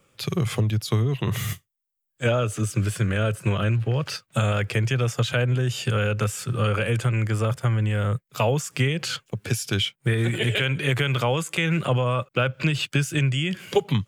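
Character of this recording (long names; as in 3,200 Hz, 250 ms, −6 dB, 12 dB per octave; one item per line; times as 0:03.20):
background noise floor −78 dBFS
spectral slope −5.5 dB per octave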